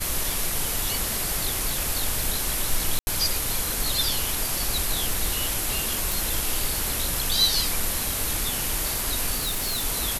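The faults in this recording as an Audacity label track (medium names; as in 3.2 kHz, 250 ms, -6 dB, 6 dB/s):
2.990000	3.070000	dropout 80 ms
6.120000	6.120000	pop
9.360000	9.850000	clipped -22.5 dBFS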